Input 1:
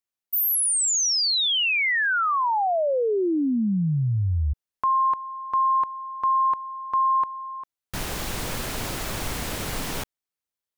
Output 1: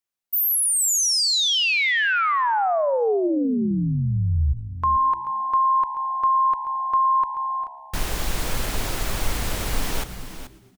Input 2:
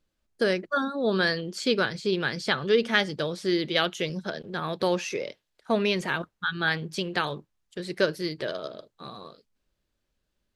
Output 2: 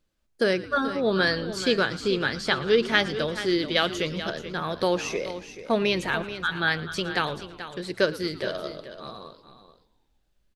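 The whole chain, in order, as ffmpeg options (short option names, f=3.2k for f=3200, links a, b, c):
-filter_complex "[0:a]asplit=2[a][b];[b]aecho=0:1:433:0.251[c];[a][c]amix=inputs=2:normalize=0,asubboost=boost=2.5:cutoff=68,asplit=2[d][e];[e]asplit=6[f][g][h][i][j][k];[f]adelay=112,afreqshift=-68,volume=-18dB[l];[g]adelay=224,afreqshift=-136,volume=-21.9dB[m];[h]adelay=336,afreqshift=-204,volume=-25.8dB[n];[i]adelay=448,afreqshift=-272,volume=-29.6dB[o];[j]adelay=560,afreqshift=-340,volume=-33.5dB[p];[k]adelay=672,afreqshift=-408,volume=-37.4dB[q];[l][m][n][o][p][q]amix=inputs=6:normalize=0[r];[d][r]amix=inputs=2:normalize=0,volume=1.5dB"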